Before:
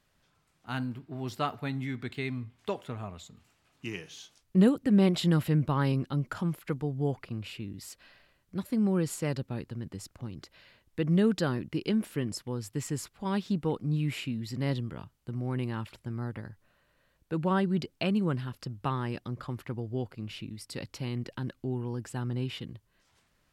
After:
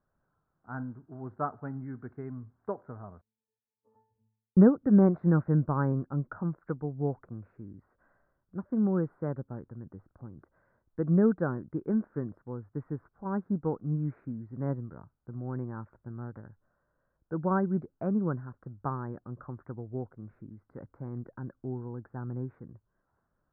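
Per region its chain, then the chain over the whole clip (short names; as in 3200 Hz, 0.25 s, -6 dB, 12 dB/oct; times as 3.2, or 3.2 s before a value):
3.21–4.57 inverted band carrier 3200 Hz + octave resonator A, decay 0.54 s
whole clip: elliptic low-pass 1500 Hz, stop band 50 dB; upward expander 1.5:1, over -37 dBFS; gain +4 dB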